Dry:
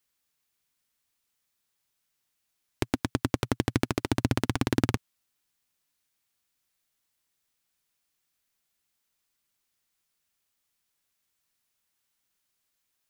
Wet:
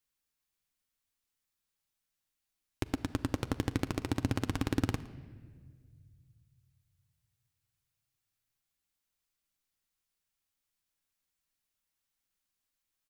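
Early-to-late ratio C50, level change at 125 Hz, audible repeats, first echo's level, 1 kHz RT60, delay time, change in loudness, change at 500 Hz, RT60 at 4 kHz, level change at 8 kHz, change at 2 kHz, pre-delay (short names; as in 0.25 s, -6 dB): 15.0 dB, -4.5 dB, 1, -21.0 dB, 1.4 s, 0.113 s, -5.5 dB, -7.0 dB, 1.2 s, -7.0 dB, -7.0 dB, 4 ms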